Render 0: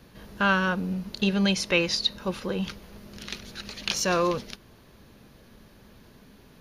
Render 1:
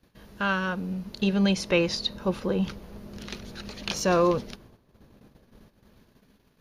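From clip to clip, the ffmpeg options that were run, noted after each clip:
ffmpeg -i in.wav -filter_complex "[0:a]agate=range=-13dB:threshold=-51dB:ratio=16:detection=peak,acrossover=split=1100[link_01][link_02];[link_01]dynaudnorm=framelen=240:gausssize=11:maxgain=7.5dB[link_03];[link_03][link_02]amix=inputs=2:normalize=0,volume=-4dB" out.wav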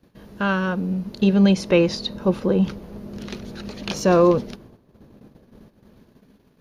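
ffmpeg -i in.wav -af "equalizer=frequency=270:width=0.34:gain=8" out.wav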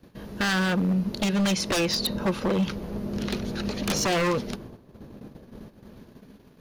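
ffmpeg -i in.wav -filter_complex "[0:a]acrossover=split=1100[link_01][link_02];[link_01]acompressor=threshold=-24dB:ratio=12[link_03];[link_03][link_02]amix=inputs=2:normalize=0,aeval=exprs='0.0708*(abs(mod(val(0)/0.0708+3,4)-2)-1)':channel_layout=same,volume=4.5dB" out.wav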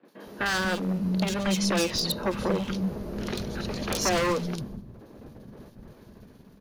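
ffmpeg -i in.wav -filter_complex "[0:a]acrossover=split=230|2900[link_01][link_02][link_03];[link_03]adelay=50[link_04];[link_01]adelay=240[link_05];[link_05][link_02][link_04]amix=inputs=3:normalize=0" out.wav

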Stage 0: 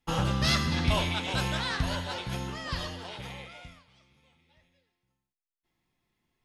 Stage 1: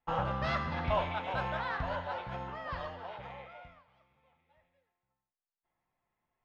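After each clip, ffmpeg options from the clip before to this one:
ffmpeg -i in.wav -af "lowpass=1500,lowshelf=frequency=460:width_type=q:width=1.5:gain=-8.5" out.wav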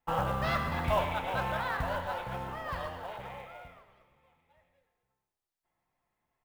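ffmpeg -i in.wav -filter_complex "[0:a]acrusher=bits=6:mode=log:mix=0:aa=0.000001,asplit=7[link_01][link_02][link_03][link_04][link_05][link_06][link_07];[link_02]adelay=116,afreqshift=-33,volume=-13dB[link_08];[link_03]adelay=232,afreqshift=-66,volume=-17.6dB[link_09];[link_04]adelay=348,afreqshift=-99,volume=-22.2dB[link_10];[link_05]adelay=464,afreqshift=-132,volume=-26.7dB[link_11];[link_06]adelay=580,afreqshift=-165,volume=-31.3dB[link_12];[link_07]adelay=696,afreqshift=-198,volume=-35.9dB[link_13];[link_01][link_08][link_09][link_10][link_11][link_12][link_13]amix=inputs=7:normalize=0,volume=2dB" out.wav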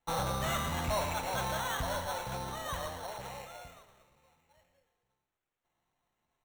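ffmpeg -i in.wav -af "acrusher=samples=9:mix=1:aa=0.000001,asoftclip=type=tanh:threshold=-26.5dB" out.wav

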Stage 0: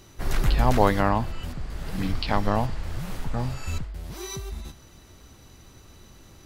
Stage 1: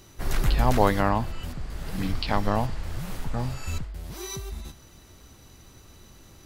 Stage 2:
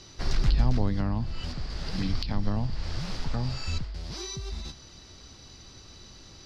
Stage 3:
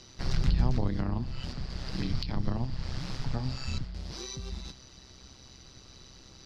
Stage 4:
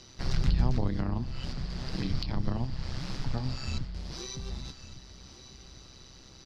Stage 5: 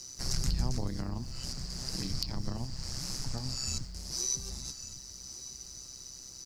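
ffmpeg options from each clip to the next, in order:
ffmpeg -i in.wav -af "highshelf=frequency=7600:gain=4,volume=-1dB" out.wav
ffmpeg -i in.wav -filter_complex "[0:a]lowpass=frequency=4900:width_type=q:width=3.9,acrossover=split=270[link_01][link_02];[link_02]acompressor=threshold=-35dB:ratio=10[link_03];[link_01][link_03]amix=inputs=2:normalize=0" out.wav
ffmpeg -i in.wav -af "tremolo=f=130:d=0.71" out.wav
ffmpeg -i in.wav -af "aecho=1:1:1154:0.178" out.wav
ffmpeg -i in.wav -af "aexciter=amount=13.6:drive=3.8:freq=5200,volume=-5.5dB" out.wav

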